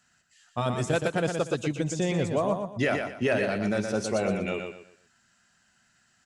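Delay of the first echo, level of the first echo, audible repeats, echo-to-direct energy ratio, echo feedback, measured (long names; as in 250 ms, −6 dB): 120 ms, −5.5 dB, 3, −5.0 dB, 30%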